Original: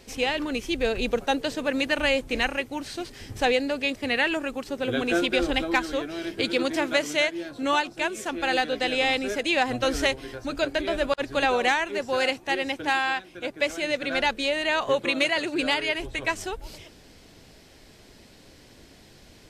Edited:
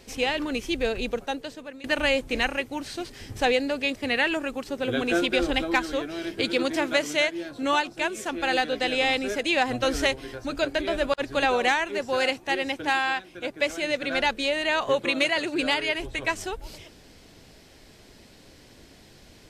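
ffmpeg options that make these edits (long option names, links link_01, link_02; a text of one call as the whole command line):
ffmpeg -i in.wav -filter_complex "[0:a]asplit=2[link_01][link_02];[link_01]atrim=end=1.84,asetpts=PTS-STARTPTS,afade=type=out:start_time=0.72:duration=1.12:silence=0.0841395[link_03];[link_02]atrim=start=1.84,asetpts=PTS-STARTPTS,afade=type=in:duration=0.004:curve=hsin:silence=0.0841395[link_04];[link_03][link_04]concat=n=2:v=0:a=1" out.wav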